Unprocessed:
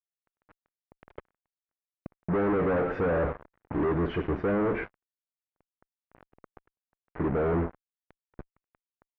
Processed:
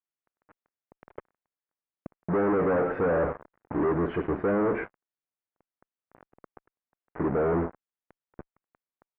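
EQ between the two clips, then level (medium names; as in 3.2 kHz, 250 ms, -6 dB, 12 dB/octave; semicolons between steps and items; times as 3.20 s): low-pass 1.9 kHz 12 dB/octave; bass shelf 110 Hz -10.5 dB; +2.5 dB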